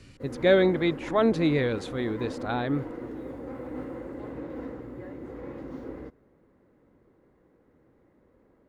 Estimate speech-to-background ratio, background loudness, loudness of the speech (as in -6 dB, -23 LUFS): 12.5 dB, -38.5 LUFS, -26.0 LUFS